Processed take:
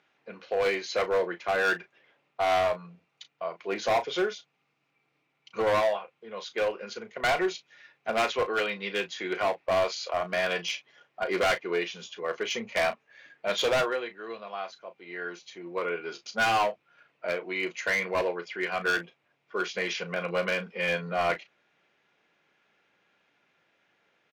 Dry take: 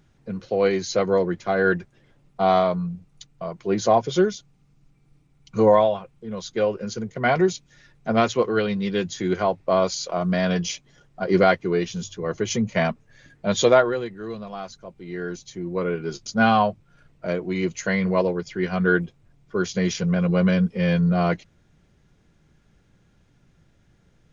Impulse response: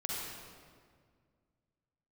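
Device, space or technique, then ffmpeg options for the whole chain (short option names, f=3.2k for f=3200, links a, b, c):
megaphone: -filter_complex "[0:a]highpass=590,lowpass=3.6k,equalizer=f=2.5k:t=o:w=0.57:g=6,asoftclip=type=hard:threshold=-21.5dB,asplit=2[a][b];[b]adelay=35,volume=-11.5dB[c];[a][c]amix=inputs=2:normalize=0"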